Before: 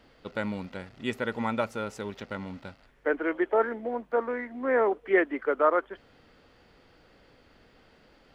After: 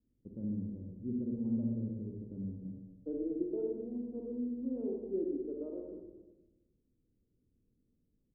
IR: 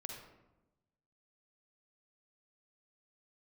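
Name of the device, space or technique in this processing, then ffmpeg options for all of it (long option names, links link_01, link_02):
next room: -filter_complex "[0:a]agate=range=-12dB:threshold=-50dB:ratio=16:detection=peak,lowpass=frequency=310:width=0.5412,lowpass=frequency=310:width=1.3066[link_01];[1:a]atrim=start_sample=2205[link_02];[link_01][link_02]afir=irnorm=-1:irlink=0,asettb=1/sr,asplit=3[link_03][link_04][link_05];[link_03]atrim=end=2.624[link_06];[link_04]atrim=start=2.62:end=3.82,asetpts=PTS-STARTPTS,afade=type=in:duration=0.004:curve=qsin,afade=type=out:start_time=1.196:duration=0.004:curve=qsin,aecho=1:1:6.5:0.6,atrim=end_sample=52920[link_07];[link_05]atrim=start=3.816[link_08];[link_06][link_07]acrossfade=duration=0.004:curve1=hsin:curve2=qsin[link_09];[link_09][link_08]acrossfade=duration=0.004:curve1=qsin:curve2=hsin,asplit=2[link_10][link_11];[link_11]adelay=123,lowpass=frequency=2000:poles=1,volume=-11dB,asplit=2[link_12][link_13];[link_13]adelay=123,lowpass=frequency=2000:poles=1,volume=0.46,asplit=2[link_14][link_15];[link_15]adelay=123,lowpass=frequency=2000:poles=1,volume=0.46,asplit=2[link_16][link_17];[link_17]adelay=123,lowpass=frequency=2000:poles=1,volume=0.46,asplit=2[link_18][link_19];[link_19]adelay=123,lowpass=frequency=2000:poles=1,volume=0.46[link_20];[link_10][link_12][link_14][link_16][link_18][link_20]amix=inputs=6:normalize=0"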